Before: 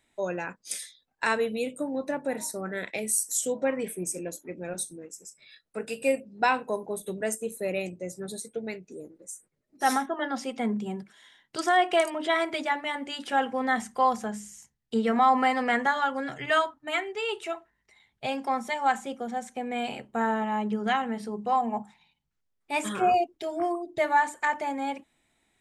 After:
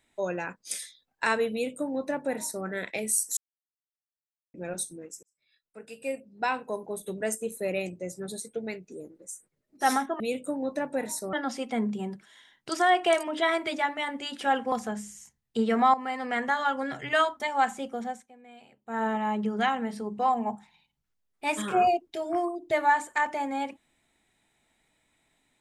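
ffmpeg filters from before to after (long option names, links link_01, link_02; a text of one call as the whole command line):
ffmpeg -i in.wav -filter_complex "[0:a]asplit=11[link_01][link_02][link_03][link_04][link_05][link_06][link_07][link_08][link_09][link_10][link_11];[link_01]atrim=end=3.37,asetpts=PTS-STARTPTS,afade=type=out:start_time=3.366:duration=0.004:curve=hsin[link_12];[link_02]atrim=start=3.37:end=4.54,asetpts=PTS-STARTPTS,volume=0[link_13];[link_03]atrim=start=4.54:end=5.23,asetpts=PTS-STARTPTS,afade=type=in:duration=0.004:curve=hsin,afade=type=out:start_time=0.686:duration=0.004:curve=hsin[link_14];[link_04]atrim=start=5.23:end=10.202,asetpts=PTS-STARTPTS,afade=type=in:duration=2.12[link_15];[link_05]atrim=start=1.518:end=2.652[link_16];[link_06]atrim=start=10.198:end=13.592[link_17];[link_07]atrim=start=14.088:end=15.31,asetpts=PTS-STARTPTS,afade=type=out:start_time=1.218:duration=0.004:curve=hsin:silence=0.199526[link_18];[link_08]atrim=start=15.31:end=16.772,asetpts=PTS-STARTPTS,afade=type=in:duration=0.77:silence=0.199526[link_19];[link_09]atrim=start=18.668:end=19.54,asetpts=PTS-STARTPTS,afade=type=out:start_time=0.642:duration=0.23:silence=0.1[link_20];[link_10]atrim=start=19.54:end=20.11,asetpts=PTS-STARTPTS,volume=-20dB[link_21];[link_11]atrim=start=20.11,asetpts=PTS-STARTPTS,afade=type=in:duration=0.23:silence=0.1[link_22];[link_12][link_13][link_14][link_15]concat=n=4:v=0:a=1[link_23];[link_23][link_16]acrossfade=duration=0.004:curve1=hsin:curve2=hsin[link_24];[link_24][link_17]acrossfade=duration=0.004:curve1=hsin:curve2=hsin[link_25];[link_18][link_19]concat=n=2:v=0:a=1[link_26];[link_25][link_26]acrossfade=duration=0.004:curve1=hsin:curve2=hsin[link_27];[link_20][link_21][link_22]concat=n=3:v=0:a=1[link_28];[link_27][link_28]acrossfade=duration=0.004:curve1=hsin:curve2=hsin" out.wav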